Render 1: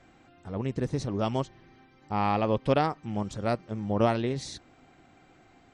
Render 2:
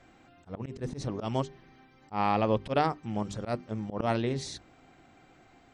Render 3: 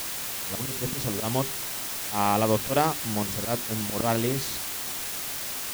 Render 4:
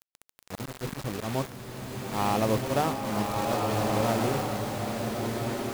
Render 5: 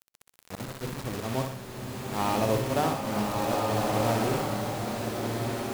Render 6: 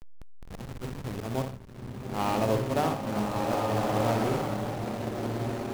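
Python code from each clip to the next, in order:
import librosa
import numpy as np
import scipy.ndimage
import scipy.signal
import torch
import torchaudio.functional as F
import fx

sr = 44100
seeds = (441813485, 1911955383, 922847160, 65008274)

y1 = fx.hum_notches(x, sr, base_hz=50, count=8)
y1 = fx.auto_swell(y1, sr, attack_ms=104.0)
y2 = fx.quant_dither(y1, sr, seeds[0], bits=6, dither='triangular')
y2 = y2 * 10.0 ** (3.0 / 20.0)
y3 = scipy.signal.medfilt(y2, 15)
y3 = fx.rev_bloom(y3, sr, seeds[1], attack_ms=1530, drr_db=-1.0)
y3 = y3 * 10.0 ** (-3.0 / 20.0)
y4 = fx.echo_feedback(y3, sr, ms=62, feedback_pct=45, wet_db=-6.0)
y4 = y4 * 10.0 ** (-1.0 / 20.0)
y5 = fx.backlash(y4, sr, play_db=-29.0)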